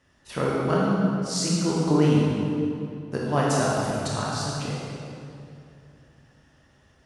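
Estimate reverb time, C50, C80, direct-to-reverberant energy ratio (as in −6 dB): 2.7 s, −3.0 dB, −1.0 dB, −5.5 dB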